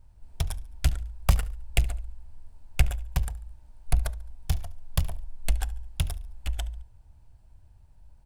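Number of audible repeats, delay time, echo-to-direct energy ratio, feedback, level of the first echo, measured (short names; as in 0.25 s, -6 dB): 2, 71 ms, -19.5 dB, 41%, -20.5 dB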